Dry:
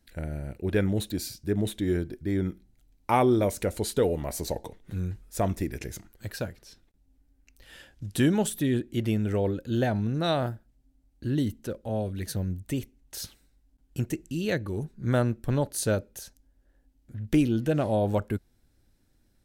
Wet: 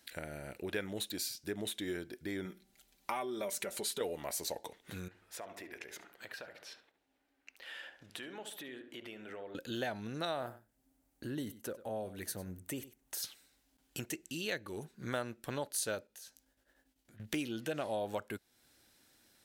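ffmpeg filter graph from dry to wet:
-filter_complex "[0:a]asettb=1/sr,asplit=3[s0][s1][s2];[s0]atrim=end=2.454[s3];[s1]atrim=start=2.45:end=4.01,asetpts=PTS-STARTPTS,afade=t=in:d=0.004:c=qsin,afade=t=out:st=1.556:d=0.004:c=qsin,aecho=1:1:5.1:0.66,atrim=end_sample=68796,acompressor=threshold=0.0398:ratio=2.5:attack=3.2:release=140:knee=1:detection=peak[s4];[s2]atrim=start=4.006[s5];[s3][s4]acrossfade=d=0.004:c1=hsin:c2=qsin[s6];[s6][s5]acrossfade=d=0.004:c1=qsin:c2=hsin,asettb=1/sr,asplit=3[s7][s8][s9];[s7]atrim=end=5.084[s10];[s8]atrim=start=5.08:end=9.55,asetpts=PTS-STARTPTS,afade=t=in:d=0.004:c=qsin,afade=t=out:st=4.466:d=0.004:c=qsin,bass=f=250:g=-13,treble=f=4000:g=-14,acompressor=threshold=0.00316:ratio=2.5:attack=3.2:release=140:knee=1:detection=peak,asplit=2[s11][s12];[s12]adelay=70,lowpass=f=1600:p=1,volume=0.376,asplit=2[s13][s14];[s14]adelay=70,lowpass=f=1600:p=1,volume=0.49,asplit=2[s15][s16];[s16]adelay=70,lowpass=f=1600:p=1,volume=0.49,asplit=2[s17][s18];[s18]adelay=70,lowpass=f=1600:p=1,volume=0.49,asplit=2[s19][s20];[s20]adelay=70,lowpass=f=1600:p=1,volume=0.49,asplit=2[s21][s22];[s22]adelay=70,lowpass=f=1600:p=1,volume=0.49[s23];[s11][s13][s15][s17][s19][s21][s23]amix=inputs=7:normalize=0,atrim=end_sample=197127[s24];[s9]atrim=start=9.546[s25];[s10][s24]acrossfade=d=0.004:c1=hsin:c2=qsin[s26];[s26][s25]acrossfade=d=0.004:c1=qsin:c2=hsin,asettb=1/sr,asplit=3[s27][s28][s29];[s27]atrim=end=10.254[s30];[s28]atrim=start=10.25:end=13.23,asetpts=PTS-STARTPTS,afade=t=in:d=0.004:c=qsin,afade=t=out:st=2.976:d=0.004:c=qsin,equalizer=f=3700:w=0.67:g=-9,aecho=1:1:97:0.133,atrim=end_sample=131418[s31];[s29]atrim=start=13.226[s32];[s30][s31]acrossfade=d=0.004:c1=hsin:c2=qsin[s33];[s33][s32]acrossfade=d=0.004:c1=qsin:c2=hsin,asettb=1/sr,asplit=3[s34][s35][s36];[s34]atrim=end=16.074[s37];[s35]atrim=start=16.07:end=17.2,asetpts=PTS-STARTPTS,afade=t=in:d=0.004:c=qsin,afade=t=out:st=1.126:d=0.004:c=qsin,agate=range=0.0224:threshold=0.001:ratio=3:release=100:detection=peak,acompressor=threshold=0.001:ratio=2.5:attack=3.2:release=140:knee=1:detection=peak,asplit=2[s38][s39];[s39]adelay=19,volume=0.447[s40];[s38][s40]amix=inputs=2:normalize=0,atrim=end_sample=49833[s41];[s36]atrim=start=17.196[s42];[s37][s41]acrossfade=d=0.004:c1=hsin:c2=qsin[s43];[s43][s42]acrossfade=d=0.004:c1=qsin:c2=hsin,highpass=f=1000:p=1,equalizer=f=3300:t=o:w=0.77:g=2,acompressor=threshold=0.00178:ratio=2,volume=2.99"

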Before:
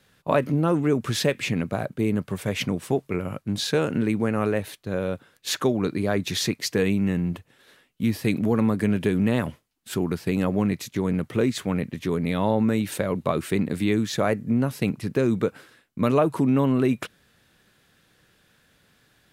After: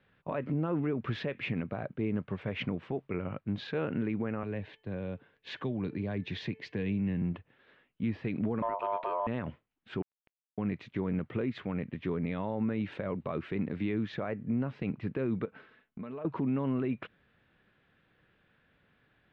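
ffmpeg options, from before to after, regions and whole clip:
-filter_complex "[0:a]asettb=1/sr,asplit=3[s0][s1][s2];[s0]atrim=end=4.434[s3];[s1]atrim=start=4.43:end=7.22,asetpts=PTS-STARTPTS,afade=t=in:d=0.004:c=qsin,afade=t=out:st=2.786:d=0.004:c=qsin,bandreject=f=1300:w=6.1,bandreject=f=438.8:t=h:w=4,bandreject=f=877.6:t=h:w=4,bandreject=f=1316.4:t=h:w=4,bandreject=f=1755.2:t=h:w=4,bandreject=f=2194:t=h:w=4,bandreject=f=2632.8:t=h:w=4,bandreject=f=3071.6:t=h:w=4,acrossover=split=220|3000[s4][s5][s6];[s5]acompressor=threshold=0.02:ratio=2.5:attack=3.2:release=140:knee=2.83:detection=peak[s7];[s4][s7][s6]amix=inputs=3:normalize=0[s8];[s2]atrim=start=7.216[s9];[s3][s8]acrossfade=d=0.004:c1=hsin:c2=qsin[s10];[s10][s9]acrossfade=d=0.004:c1=qsin:c2=hsin,asettb=1/sr,asplit=3[s11][s12][s13];[s11]atrim=end=8.624[s14];[s12]atrim=start=8.62:end=9.27,asetpts=PTS-STARTPTS,afade=t=in:d=0.004:c=qsin,afade=t=out:st=0.646:d=0.004:c=qsin,equalizer=f=110:w=1.5:g=10,aeval=exprs='val(0)*sin(2*PI*800*n/s)':c=same[s15];[s13]atrim=start=9.266[s16];[s14][s15]acrossfade=d=0.004:c1=hsin:c2=qsin[s17];[s17][s16]acrossfade=d=0.004:c1=qsin:c2=hsin,asettb=1/sr,asplit=3[s18][s19][s20];[s18]atrim=end=10.024[s21];[s19]atrim=start=10.02:end=10.58,asetpts=PTS-STARTPTS,afade=t=in:d=0.004:c=qsin,afade=t=out:st=0.556:d=0.004:c=qsin,acompressor=threshold=0.0178:ratio=12:attack=3.2:release=140:knee=1:detection=peak,acrusher=bits=3:mix=0:aa=0.5[s22];[s20]atrim=start=10.576[s23];[s21][s22]acrossfade=d=0.004:c1=hsin:c2=qsin[s24];[s24][s23]acrossfade=d=0.004:c1=qsin:c2=hsin,asettb=1/sr,asplit=3[s25][s26][s27];[s25]atrim=end=15.454[s28];[s26]atrim=start=15.45:end=16.25,asetpts=PTS-STARTPTS,afade=t=in:d=0.004:c=qsin,afade=t=out:st=0.796:d=0.004:c=qsin,aecho=1:1:4.6:0.39,atrim=end_sample=35280,acompressor=threshold=0.0282:ratio=12:attack=3.2:release=140:knee=1:detection=peak[s29];[s27]atrim=start=16.246[s30];[s28][s29]acrossfade=d=0.004:c1=hsin:c2=qsin[s31];[s31][s30]acrossfade=d=0.004:c1=qsin:c2=hsin,lowpass=f=2900:w=0.5412,lowpass=f=2900:w=1.3066,alimiter=limit=0.141:level=0:latency=1:release=91,volume=0.501"

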